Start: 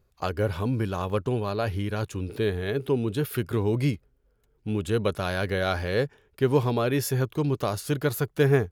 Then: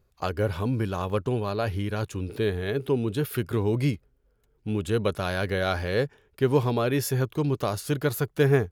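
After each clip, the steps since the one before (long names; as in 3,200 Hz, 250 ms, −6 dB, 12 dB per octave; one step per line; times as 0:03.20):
no processing that can be heard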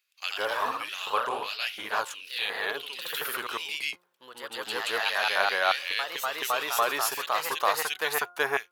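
hum removal 177.4 Hz, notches 8
auto-filter high-pass square 1.4 Hz 940–2,600 Hz
delay with pitch and tempo change per echo 95 ms, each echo +1 semitone, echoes 3
level +2 dB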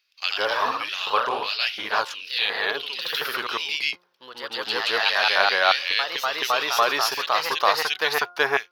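high shelf with overshoot 6,400 Hz −7.5 dB, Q 3
level +5 dB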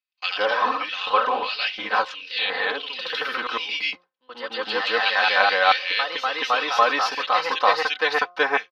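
Bessel low-pass filter 3,000 Hz, order 2
noise gate with hold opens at −33 dBFS
comb filter 3.9 ms, depth 88%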